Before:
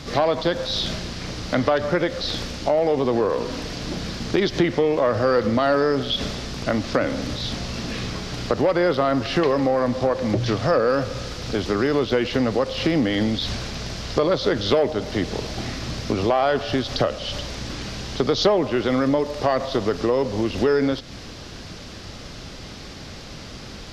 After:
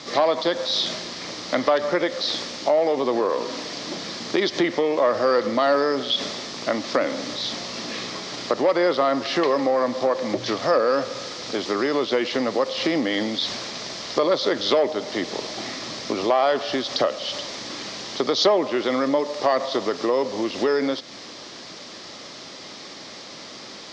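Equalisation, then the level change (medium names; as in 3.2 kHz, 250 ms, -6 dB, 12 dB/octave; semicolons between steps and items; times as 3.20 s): cabinet simulation 360–7400 Hz, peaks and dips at 450 Hz -4 dB, 760 Hz -3 dB, 2.7 kHz -5 dB; peaking EQ 1.5 kHz -7 dB 0.24 oct; +3.0 dB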